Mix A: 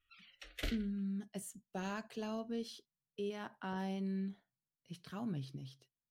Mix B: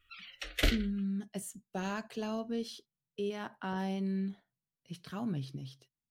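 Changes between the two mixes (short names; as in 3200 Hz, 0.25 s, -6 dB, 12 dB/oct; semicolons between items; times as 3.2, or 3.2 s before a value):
speech +4.5 dB; background +11.5 dB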